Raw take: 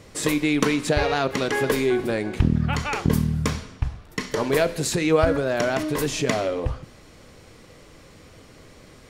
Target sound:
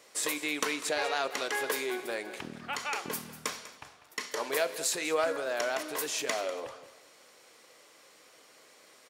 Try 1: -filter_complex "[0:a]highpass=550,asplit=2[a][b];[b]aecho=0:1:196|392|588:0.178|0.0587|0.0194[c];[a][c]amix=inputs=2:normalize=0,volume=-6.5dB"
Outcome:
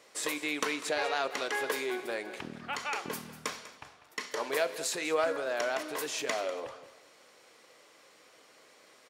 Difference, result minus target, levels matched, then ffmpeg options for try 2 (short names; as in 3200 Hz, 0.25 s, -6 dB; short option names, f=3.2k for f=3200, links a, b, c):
8000 Hz band -3.0 dB
-filter_complex "[0:a]highpass=550,highshelf=f=6.6k:g=7,asplit=2[a][b];[b]aecho=0:1:196|392|588:0.178|0.0587|0.0194[c];[a][c]amix=inputs=2:normalize=0,volume=-6.5dB"